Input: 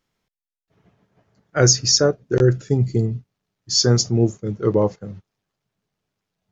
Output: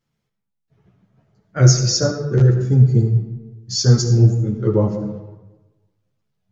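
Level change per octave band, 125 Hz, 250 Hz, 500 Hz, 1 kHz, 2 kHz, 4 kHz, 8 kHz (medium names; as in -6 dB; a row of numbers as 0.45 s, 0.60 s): +7.5 dB, +1.5 dB, -2.5 dB, -2.5 dB, -3.0 dB, -3.5 dB, no reading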